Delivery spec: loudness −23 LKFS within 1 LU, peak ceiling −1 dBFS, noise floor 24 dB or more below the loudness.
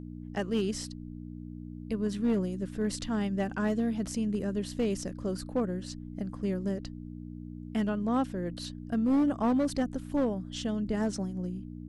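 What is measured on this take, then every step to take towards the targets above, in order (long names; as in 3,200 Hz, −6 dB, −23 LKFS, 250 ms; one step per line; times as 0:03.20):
share of clipped samples 1.1%; peaks flattened at −21.5 dBFS; mains hum 60 Hz; hum harmonics up to 300 Hz; level of the hum −40 dBFS; integrated loudness −31.5 LKFS; sample peak −21.5 dBFS; target loudness −23.0 LKFS
→ clipped peaks rebuilt −21.5 dBFS
hum removal 60 Hz, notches 5
level +8.5 dB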